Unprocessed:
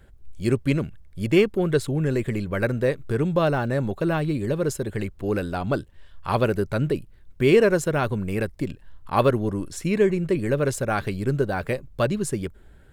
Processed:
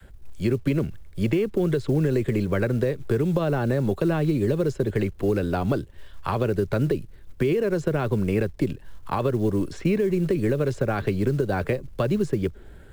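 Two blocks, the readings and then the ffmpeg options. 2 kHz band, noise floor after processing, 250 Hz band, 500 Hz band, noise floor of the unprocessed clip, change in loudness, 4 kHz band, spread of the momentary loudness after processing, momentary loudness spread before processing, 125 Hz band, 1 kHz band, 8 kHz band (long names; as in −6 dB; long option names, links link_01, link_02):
−4.5 dB, −45 dBFS, +0.5 dB, −1.5 dB, −50 dBFS, −0.5 dB, −5.0 dB, 6 LU, 9 LU, +1.0 dB, −3.5 dB, can't be measured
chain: -filter_complex "[0:a]adynamicequalizer=threshold=0.0224:dfrequency=400:dqfactor=1.5:tfrequency=400:tqfactor=1.5:attack=5:release=100:ratio=0.375:range=3:mode=boostabove:tftype=bell,acrossover=split=320|6500[link_01][link_02][link_03];[link_03]acompressor=threshold=-60dB:ratio=6[link_04];[link_01][link_02][link_04]amix=inputs=3:normalize=0,alimiter=limit=-13.5dB:level=0:latency=1:release=119,acrossover=split=87|190|3200[link_05][link_06][link_07][link_08];[link_05]acompressor=threshold=-38dB:ratio=4[link_09];[link_06]acompressor=threshold=-31dB:ratio=4[link_10];[link_07]acompressor=threshold=-28dB:ratio=4[link_11];[link_08]acompressor=threshold=-53dB:ratio=4[link_12];[link_09][link_10][link_11][link_12]amix=inputs=4:normalize=0,acrusher=bits=8:mode=log:mix=0:aa=0.000001,volume=5dB"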